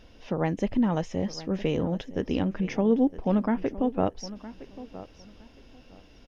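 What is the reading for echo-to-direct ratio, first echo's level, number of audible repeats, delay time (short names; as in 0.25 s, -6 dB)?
-16.0 dB, -16.0 dB, 2, 0.963 s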